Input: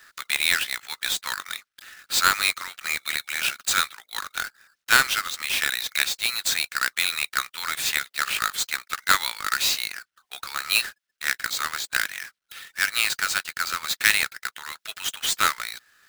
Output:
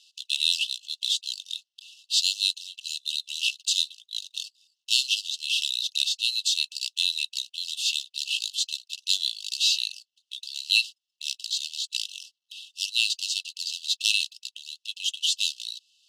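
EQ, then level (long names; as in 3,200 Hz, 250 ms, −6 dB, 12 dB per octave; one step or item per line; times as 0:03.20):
linear-phase brick-wall high-pass 2,600 Hz
low-pass filter 5,400 Hz 12 dB per octave
+3.5 dB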